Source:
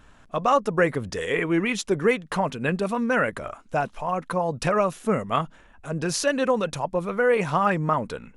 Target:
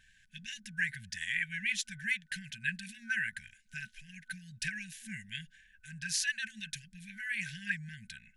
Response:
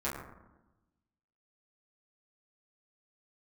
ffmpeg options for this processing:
-af "afftfilt=real='re*(1-between(b*sr/4096,230,1500))':imag='im*(1-between(b*sr/4096,230,1500))':win_size=4096:overlap=0.75,lowshelf=f=420:t=q:w=3:g=-11,volume=-4.5dB"

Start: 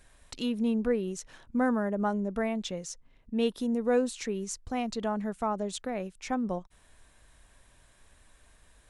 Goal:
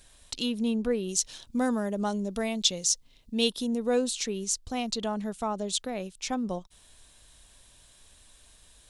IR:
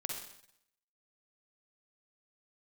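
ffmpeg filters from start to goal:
-af "asetnsamples=n=441:p=0,asendcmd='1.09 highshelf g 14;3.5 highshelf g 8',highshelf=f=2.6k:t=q:w=1.5:g=7"

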